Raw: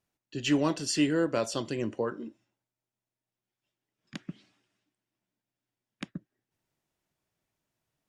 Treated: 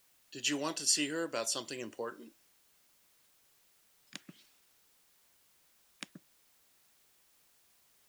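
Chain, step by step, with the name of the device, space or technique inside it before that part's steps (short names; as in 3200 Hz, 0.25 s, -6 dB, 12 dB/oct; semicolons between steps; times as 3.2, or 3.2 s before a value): turntable without a phono preamp (RIAA curve recording; white noise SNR 27 dB); gain -6 dB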